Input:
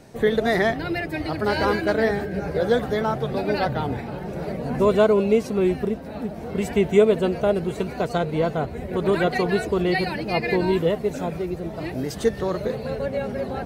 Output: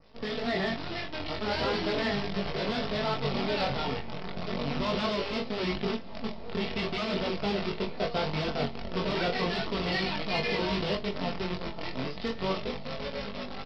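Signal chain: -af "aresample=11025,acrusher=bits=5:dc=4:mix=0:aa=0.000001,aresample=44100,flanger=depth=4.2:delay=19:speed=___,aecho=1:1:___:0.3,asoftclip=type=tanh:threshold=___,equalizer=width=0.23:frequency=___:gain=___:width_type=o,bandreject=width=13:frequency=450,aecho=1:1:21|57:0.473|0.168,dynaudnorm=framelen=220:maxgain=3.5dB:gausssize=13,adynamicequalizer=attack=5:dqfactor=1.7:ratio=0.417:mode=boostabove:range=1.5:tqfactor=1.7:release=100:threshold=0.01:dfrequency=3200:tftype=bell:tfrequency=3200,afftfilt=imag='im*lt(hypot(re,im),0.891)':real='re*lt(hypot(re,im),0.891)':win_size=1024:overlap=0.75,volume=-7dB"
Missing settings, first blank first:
0.38, 4.5, -12dB, 1.6k, -5.5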